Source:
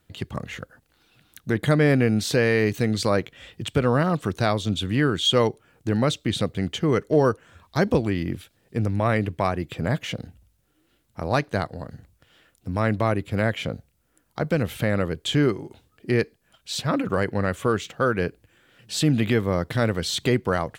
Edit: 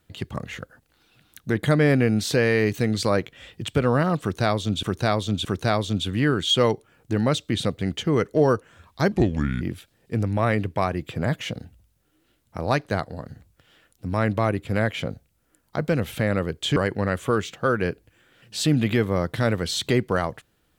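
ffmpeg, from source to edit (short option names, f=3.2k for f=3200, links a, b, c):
-filter_complex "[0:a]asplit=6[a][b][c][d][e][f];[a]atrim=end=4.832[g];[b]atrim=start=4.208:end=4.832[h];[c]atrim=start=4.208:end=7.884[i];[d]atrim=start=7.88:end=8.24,asetpts=PTS-STARTPTS,asetrate=32193,aresample=44100[j];[e]atrim=start=8.236:end=15.392[k];[f]atrim=start=17.128[l];[g][h]acrossfade=d=0.004:c1=hsin:c2=hsin[m];[m][i]acrossfade=d=0.004:c1=hsin:c2=hsin[n];[n][j]acrossfade=d=0.004:c1=hsin:c2=hsin[o];[o][k]acrossfade=d=0.004:c1=hsin:c2=hsin[p];[p][l]acrossfade=d=0.004:c1=hsin:c2=hsin"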